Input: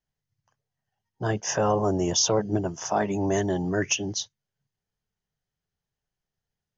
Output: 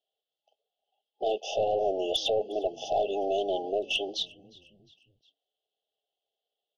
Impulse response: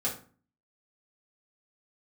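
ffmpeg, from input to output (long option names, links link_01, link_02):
-filter_complex "[0:a]alimiter=limit=-21dB:level=0:latency=1:release=17,highpass=frequency=440:width=0.5412,highpass=frequency=440:width=1.3066,equalizer=frequency=440:width_type=q:width=4:gain=5,equalizer=frequency=640:width_type=q:width=4:gain=6,equalizer=frequency=930:width_type=q:width=4:gain=4,equalizer=frequency=1400:width_type=q:width=4:gain=-9,equalizer=frequency=2200:width_type=q:width=4:gain=4,equalizer=frequency=3400:width_type=q:width=4:gain=10,lowpass=frequency=3900:width=0.5412,lowpass=frequency=3900:width=1.3066,aeval=exprs='0.15*(cos(1*acos(clip(val(0)/0.15,-1,1)))-cos(1*PI/2))+0.0168*(cos(2*acos(clip(val(0)/0.15,-1,1)))-cos(2*PI/2))+0.0237*(cos(5*acos(clip(val(0)/0.15,-1,1)))-cos(5*PI/2))+0.00944*(cos(7*acos(clip(val(0)/0.15,-1,1)))-cos(7*PI/2))':channel_layout=same,asplit=4[link_01][link_02][link_03][link_04];[link_02]adelay=356,afreqshift=-95,volume=-23.5dB[link_05];[link_03]adelay=712,afreqshift=-190,volume=-29dB[link_06];[link_04]adelay=1068,afreqshift=-285,volume=-34.5dB[link_07];[link_01][link_05][link_06][link_07]amix=inputs=4:normalize=0,afftfilt=real='re*(1-between(b*sr/4096,830,2600))':imag='im*(1-between(b*sr/4096,830,2600))':win_size=4096:overlap=0.75"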